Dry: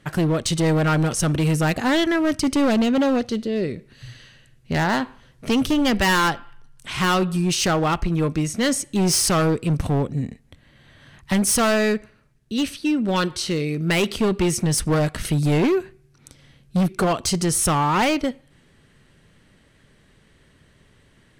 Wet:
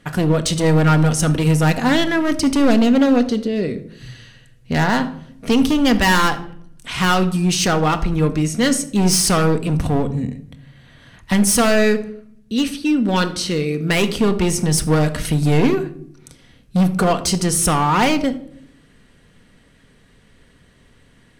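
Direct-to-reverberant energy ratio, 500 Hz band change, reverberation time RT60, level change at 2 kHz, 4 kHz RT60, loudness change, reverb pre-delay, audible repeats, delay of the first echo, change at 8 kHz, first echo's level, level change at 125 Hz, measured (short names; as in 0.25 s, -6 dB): 8.0 dB, +3.0 dB, 0.65 s, +3.0 dB, 0.40 s, +3.5 dB, 4 ms, none, none, +3.0 dB, none, +4.0 dB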